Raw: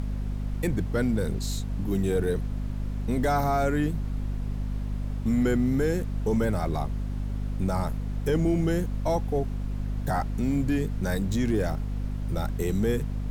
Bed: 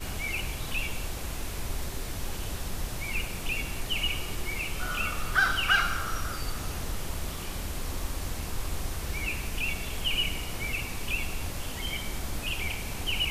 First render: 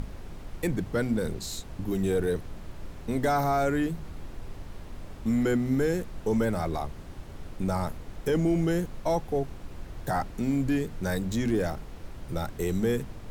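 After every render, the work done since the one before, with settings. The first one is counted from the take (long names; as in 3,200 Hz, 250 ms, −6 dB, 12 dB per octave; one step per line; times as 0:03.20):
mains-hum notches 50/100/150/200/250 Hz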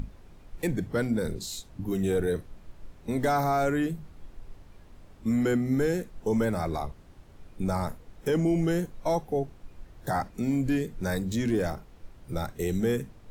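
noise reduction from a noise print 10 dB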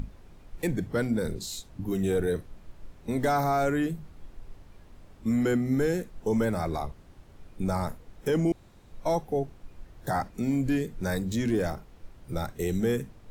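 0:08.52–0:08.92: fill with room tone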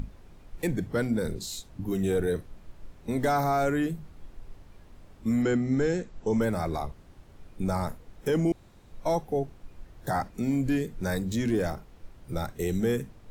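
0:05.42–0:06.41: Butterworth low-pass 8,000 Hz 96 dB per octave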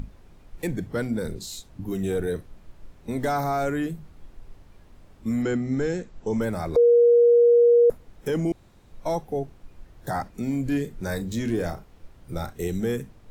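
0:06.76–0:07.90: beep over 475 Hz −12.5 dBFS
0:10.66–0:12.68: double-tracking delay 35 ms −11 dB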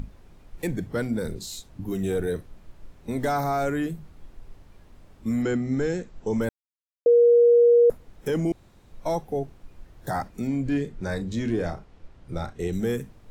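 0:06.49–0:07.06: silence
0:10.47–0:12.73: high-frequency loss of the air 67 metres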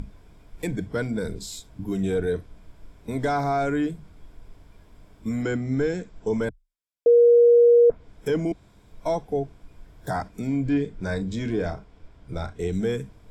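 EQ curve with evenly spaced ripples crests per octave 1.7, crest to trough 6 dB
treble cut that deepens with the level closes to 1,700 Hz, closed at −12.5 dBFS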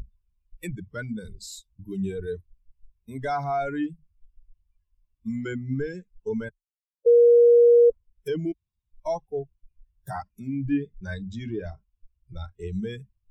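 spectral dynamics exaggerated over time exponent 2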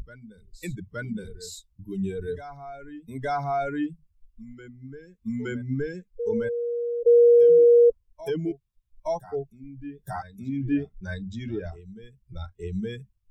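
backwards echo 869 ms −13.5 dB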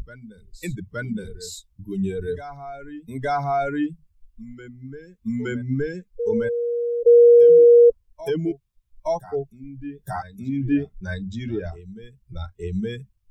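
level +4 dB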